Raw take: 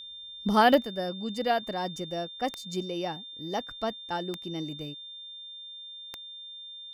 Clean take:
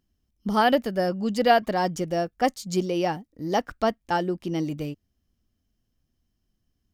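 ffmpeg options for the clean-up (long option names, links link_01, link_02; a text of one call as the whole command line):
ffmpeg -i in.wav -af "adeclick=threshold=4,bandreject=frequency=3600:width=30,asetnsamples=nb_out_samples=441:pad=0,asendcmd='0.83 volume volume 8dB',volume=0dB" out.wav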